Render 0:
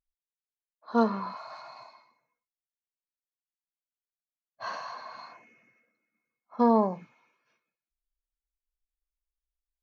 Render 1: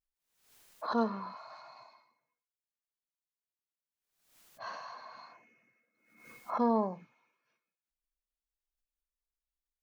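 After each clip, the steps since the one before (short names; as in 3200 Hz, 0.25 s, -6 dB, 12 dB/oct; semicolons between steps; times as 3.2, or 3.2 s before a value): backwards sustainer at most 81 dB/s; gain -6.5 dB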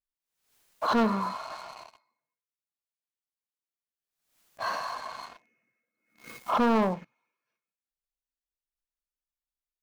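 sample leveller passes 3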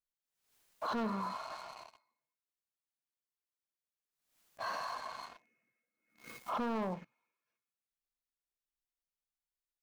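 limiter -25.5 dBFS, peak gain reduction 8 dB; gain -5 dB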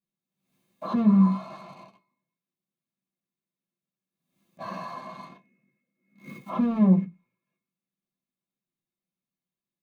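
reverb RT60 0.15 s, pre-delay 3 ms, DRR -2.5 dB; gain -5 dB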